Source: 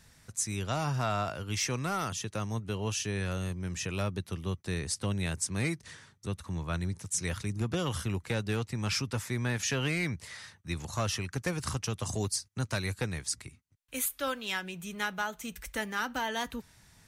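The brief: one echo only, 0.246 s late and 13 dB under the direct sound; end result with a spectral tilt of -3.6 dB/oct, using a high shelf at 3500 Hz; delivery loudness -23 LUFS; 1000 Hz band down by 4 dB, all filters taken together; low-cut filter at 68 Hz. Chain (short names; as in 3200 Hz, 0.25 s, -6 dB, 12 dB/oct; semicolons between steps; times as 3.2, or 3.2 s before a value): HPF 68 Hz; bell 1000 Hz -6.5 dB; high shelf 3500 Hz +6.5 dB; echo 0.246 s -13 dB; gain +8.5 dB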